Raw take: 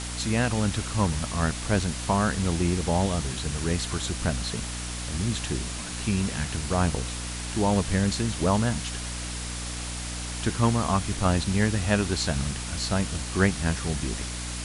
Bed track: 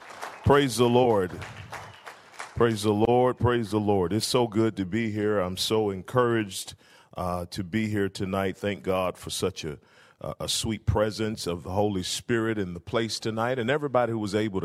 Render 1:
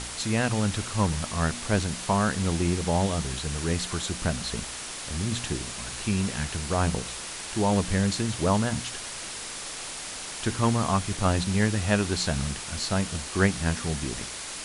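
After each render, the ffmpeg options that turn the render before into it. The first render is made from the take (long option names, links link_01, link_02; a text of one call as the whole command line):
ffmpeg -i in.wav -af "bandreject=frequency=60:width_type=h:width=4,bandreject=frequency=120:width_type=h:width=4,bandreject=frequency=180:width_type=h:width=4,bandreject=frequency=240:width_type=h:width=4,bandreject=frequency=300:width_type=h:width=4" out.wav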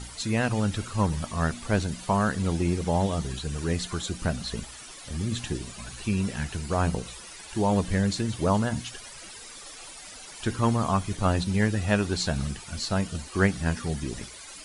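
ffmpeg -i in.wav -af "afftdn=noise_reduction=13:noise_floor=-37" out.wav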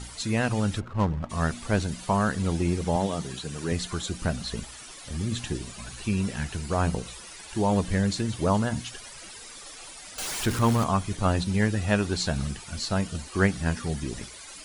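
ffmpeg -i in.wav -filter_complex "[0:a]asplit=3[link_01][link_02][link_03];[link_01]afade=type=out:start_time=0.79:duration=0.02[link_04];[link_02]adynamicsmooth=sensitivity=4:basefreq=680,afade=type=in:start_time=0.79:duration=0.02,afade=type=out:start_time=1.29:duration=0.02[link_05];[link_03]afade=type=in:start_time=1.29:duration=0.02[link_06];[link_04][link_05][link_06]amix=inputs=3:normalize=0,asettb=1/sr,asplit=3[link_07][link_08][link_09];[link_07]atrim=end=2.964[link_10];[link_08]atrim=start=2.96:end=3.72,asetpts=PTS-STARTPTS,afade=type=in:duration=0.004:curve=qsin,afade=type=out:start_time=0.756:duration=0.004:curve=qsin,highpass=140[link_11];[link_09]atrim=start=3.716[link_12];[link_10][link_11]acrossfade=duration=0.004:curve1=hsin:curve2=qsin[link_13];[link_13][link_12]acrossfade=duration=0.004:curve1=qsin:curve2=hsin,asettb=1/sr,asplit=3[link_14][link_15][link_16];[link_14]atrim=end=10.184[link_17];[link_15]atrim=start=10.18:end=10.84,asetpts=PTS-STARTPTS,afade=type=in:duration=0.004:curve=qsin,afade=type=out:start_time=0.656:duration=0.004:curve=qsin,aeval=exprs='val(0)+0.5*0.0376*sgn(val(0))':channel_layout=same[link_18];[link_16]atrim=start=10.836[link_19];[link_17][link_18]acrossfade=duration=0.004:curve1=hsin:curve2=qsin[link_20];[link_20][link_19]acrossfade=duration=0.004:curve1=qsin:curve2=hsin" out.wav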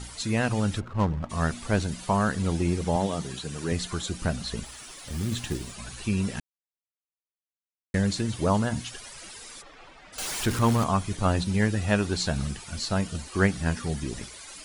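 ffmpeg -i in.wav -filter_complex "[0:a]asettb=1/sr,asplit=3[link_01][link_02][link_03];[link_01]atrim=end=4.654[link_04];[link_02]atrim=start=4.65:end=5.74,asetpts=PTS-STARTPTS,afade=type=in:duration=0.004:curve=qsin,afade=type=out:start_time=1.086:duration=0.004:curve=qsin,acrusher=bits=4:mode=log:mix=0:aa=0.000001[link_05];[link_03]atrim=start=5.736[link_06];[link_04][link_05]acrossfade=duration=0.004:curve1=hsin:curve2=qsin[link_07];[link_07][link_06]acrossfade=duration=0.004:curve1=qsin:curve2=hsin,asplit=3[link_08][link_09][link_10];[link_08]afade=type=out:start_time=9.61:duration=0.02[link_11];[link_09]lowpass=2200,afade=type=in:start_time=9.61:duration=0.02,afade=type=out:start_time=10.12:duration=0.02[link_12];[link_10]afade=type=in:start_time=10.12:duration=0.02[link_13];[link_11][link_12][link_13]amix=inputs=3:normalize=0,asplit=3[link_14][link_15][link_16];[link_14]atrim=end=6.4,asetpts=PTS-STARTPTS,afade=type=out:start_time=6.396:duration=0.004:curve=hsin[link_17];[link_15]atrim=start=6.4:end=7.94,asetpts=PTS-STARTPTS,volume=0[link_18];[link_16]atrim=start=7.94,asetpts=PTS-STARTPTS,afade=type=in:duration=0.004:curve=hsin[link_19];[link_17][link_18][link_19]concat=n=3:v=0:a=1" out.wav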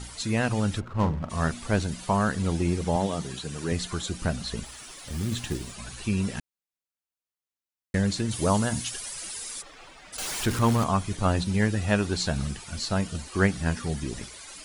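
ffmpeg -i in.wav -filter_complex "[0:a]asettb=1/sr,asplit=3[link_01][link_02][link_03];[link_01]atrim=end=0.864[link_04];[link_02]atrim=start=0.86:end=1.48,asetpts=PTS-STARTPTS,afade=type=in:duration=0.004:curve=qsin,afade=type=out:start_time=0.616:duration=0.004:curve=qsin,asplit=2[link_05][link_06];[link_06]adelay=44,volume=-9dB[link_07];[link_05][link_07]amix=inputs=2:normalize=0,atrim=end_sample=27342[link_08];[link_03]atrim=start=1.476[link_09];[link_04][link_08]acrossfade=duration=0.004:curve1=hsin:curve2=qsin[link_10];[link_10][link_09]acrossfade=duration=0.004:curve1=qsin:curve2=hsin,asettb=1/sr,asplit=3[link_11][link_12][link_13];[link_11]atrim=end=8.314[link_14];[link_12]atrim=start=8.31:end=10.17,asetpts=PTS-STARTPTS,afade=type=in:duration=0.004:curve=qsin,afade=type=out:start_time=1.856:duration=0.004:curve=qsin,aemphasis=mode=production:type=50kf[link_15];[link_13]atrim=start=10.166[link_16];[link_14][link_15]acrossfade=duration=0.004:curve1=hsin:curve2=qsin[link_17];[link_17][link_16]acrossfade=duration=0.004:curve1=qsin:curve2=hsin" out.wav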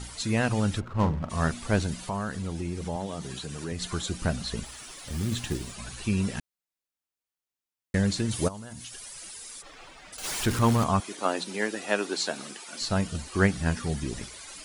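ffmpeg -i in.wav -filter_complex "[0:a]asettb=1/sr,asplit=3[link_01][link_02][link_03];[link_01]atrim=end=2.034[link_04];[link_02]atrim=start=2.03:end=3.82,asetpts=PTS-STARTPTS,afade=type=in:duration=0.004:curve=qsin,afade=type=out:start_time=1.786:duration=0.004:curve=qsin,acompressor=threshold=-33dB:ratio=2:attack=3.2:release=140:knee=1:detection=peak[link_05];[link_03]atrim=start=3.816[link_06];[link_04][link_05]acrossfade=duration=0.004:curve1=hsin:curve2=qsin[link_07];[link_07][link_06]acrossfade=duration=0.004:curve1=qsin:curve2=hsin,asplit=3[link_08][link_09][link_10];[link_08]afade=type=out:start_time=8.47:duration=0.02[link_11];[link_09]acompressor=threshold=-39dB:ratio=5:attack=3.2:release=140:knee=1:detection=peak,afade=type=in:start_time=8.47:duration=0.02,afade=type=out:start_time=10.23:duration=0.02[link_12];[link_10]afade=type=in:start_time=10.23:duration=0.02[link_13];[link_11][link_12][link_13]amix=inputs=3:normalize=0,asettb=1/sr,asplit=3[link_14][link_15][link_16];[link_14]atrim=end=11.004[link_17];[link_15]atrim=start=11:end=12.81,asetpts=PTS-STARTPTS,afade=type=in:duration=0.004:curve=qsin,afade=type=out:start_time=1.806:duration=0.004:curve=qsin,highpass=frequency=280:width=0.5412,highpass=frequency=280:width=1.3066[link_18];[link_16]atrim=start=12.806[link_19];[link_17][link_18]acrossfade=duration=0.004:curve1=hsin:curve2=qsin[link_20];[link_20][link_19]acrossfade=duration=0.004:curve1=qsin:curve2=hsin" out.wav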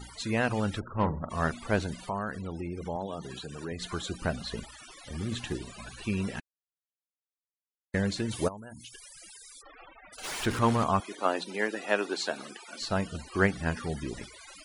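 ffmpeg -i in.wav -af "afftfilt=real='re*gte(hypot(re,im),0.00708)':imag='im*gte(hypot(re,im),0.00708)':win_size=1024:overlap=0.75,bass=frequency=250:gain=-6,treble=frequency=4000:gain=-7" out.wav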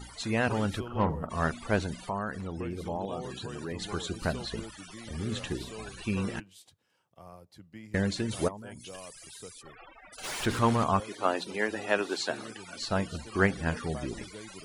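ffmpeg -i in.wav -i bed.wav -filter_complex "[1:a]volume=-20dB[link_01];[0:a][link_01]amix=inputs=2:normalize=0" out.wav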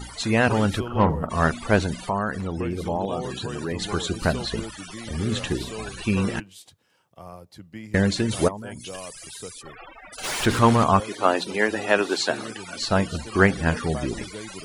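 ffmpeg -i in.wav -af "volume=8dB,alimiter=limit=-3dB:level=0:latency=1" out.wav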